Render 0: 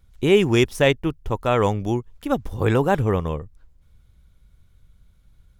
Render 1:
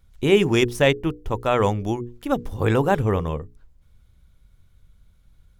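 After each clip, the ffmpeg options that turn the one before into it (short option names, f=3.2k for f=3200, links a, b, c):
-af "bandreject=f=60:t=h:w=6,bandreject=f=120:t=h:w=6,bandreject=f=180:t=h:w=6,bandreject=f=240:t=h:w=6,bandreject=f=300:t=h:w=6,bandreject=f=360:t=h:w=6,bandreject=f=420:t=h:w=6,bandreject=f=480:t=h:w=6"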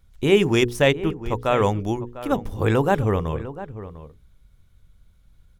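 -filter_complex "[0:a]asplit=2[a][b];[b]adelay=699.7,volume=-14dB,highshelf=f=4k:g=-15.7[c];[a][c]amix=inputs=2:normalize=0"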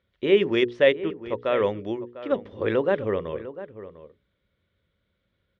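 -af "highpass=140,equalizer=f=140:t=q:w=4:g=-8,equalizer=f=380:t=q:w=4:g=5,equalizer=f=550:t=q:w=4:g=9,equalizer=f=800:t=q:w=4:g=-7,equalizer=f=1.9k:t=q:w=4:g=7,equalizer=f=3.3k:t=q:w=4:g=4,lowpass=f=4k:w=0.5412,lowpass=f=4k:w=1.3066,volume=-6.5dB"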